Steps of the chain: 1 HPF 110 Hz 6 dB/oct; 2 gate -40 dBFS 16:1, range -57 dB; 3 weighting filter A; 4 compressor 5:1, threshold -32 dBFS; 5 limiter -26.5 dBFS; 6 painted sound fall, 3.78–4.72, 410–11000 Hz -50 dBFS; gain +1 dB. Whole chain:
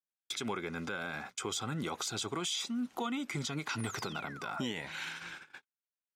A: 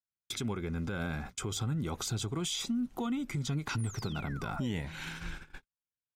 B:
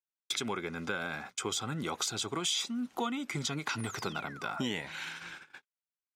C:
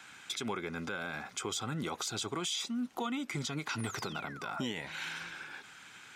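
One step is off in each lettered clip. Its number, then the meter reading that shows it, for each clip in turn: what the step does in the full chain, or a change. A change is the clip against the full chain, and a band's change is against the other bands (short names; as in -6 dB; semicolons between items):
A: 3, 125 Hz band +9.5 dB; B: 5, crest factor change +4.5 dB; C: 2, momentary loudness spread change +1 LU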